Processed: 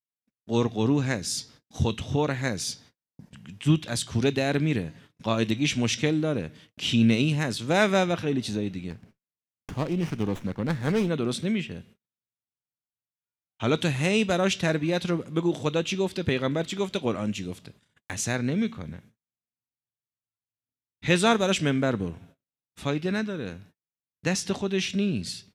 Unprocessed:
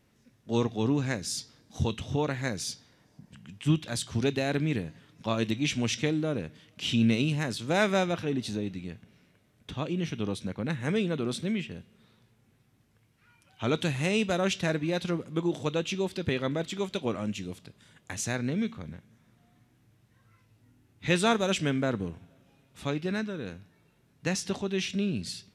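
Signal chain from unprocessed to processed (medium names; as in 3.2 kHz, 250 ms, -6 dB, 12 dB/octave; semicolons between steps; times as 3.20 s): gate -54 dBFS, range -46 dB; level rider gain up to 3.5 dB; 8.90–11.09 s: sliding maximum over 9 samples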